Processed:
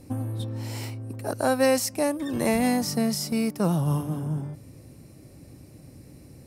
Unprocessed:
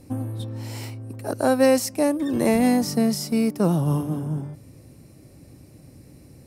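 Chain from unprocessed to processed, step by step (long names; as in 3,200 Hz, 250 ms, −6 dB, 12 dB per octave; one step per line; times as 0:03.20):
dynamic equaliser 330 Hz, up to −6 dB, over −31 dBFS, Q 0.79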